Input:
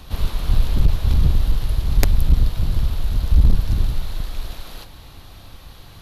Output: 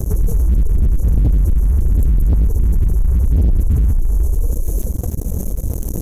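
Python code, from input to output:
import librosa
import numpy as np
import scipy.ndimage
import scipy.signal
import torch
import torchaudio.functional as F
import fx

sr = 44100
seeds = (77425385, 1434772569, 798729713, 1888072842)

p1 = scipy.signal.sosfilt(scipy.signal.ellip(3, 1.0, 50, [470.0, 5600.0], 'bandstop', fs=sr, output='sos'), x)
p2 = p1 + fx.echo_feedback(p1, sr, ms=233, feedback_pct=34, wet_db=-23, dry=0)
p3 = fx.pitch_keep_formants(p2, sr, semitones=12.0)
p4 = fx.low_shelf(p3, sr, hz=370.0, db=4.5)
p5 = p4 + 10.0 ** (-24.0 / 20.0) * np.pad(p4, (int(399 * sr / 1000.0), 0))[:len(p4)]
p6 = fx.leveller(p5, sr, passes=3)
p7 = fx.env_flatten(p6, sr, amount_pct=70)
y = p7 * 10.0 ** (-8.0 / 20.0)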